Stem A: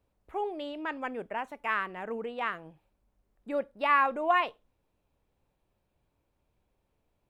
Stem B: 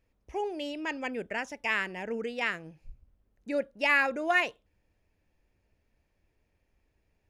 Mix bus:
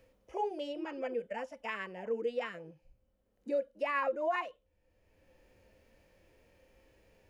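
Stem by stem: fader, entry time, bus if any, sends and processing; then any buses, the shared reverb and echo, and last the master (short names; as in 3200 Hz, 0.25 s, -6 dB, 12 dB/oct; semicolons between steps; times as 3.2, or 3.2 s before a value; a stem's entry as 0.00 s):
-7.0 dB, 0.00 s, no send, sine-wave speech; tilt shelf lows +9.5 dB, about 1200 Hz; notch comb 400 Hz
+2.0 dB, 0.00 s, no send, harmonic-percussive split percussive -13 dB; small resonant body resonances 520/3000 Hz, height 14 dB, ringing for 85 ms; three-band squash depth 40%; auto duck -10 dB, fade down 0.35 s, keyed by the first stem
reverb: off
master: limiter -24 dBFS, peak gain reduction 9.5 dB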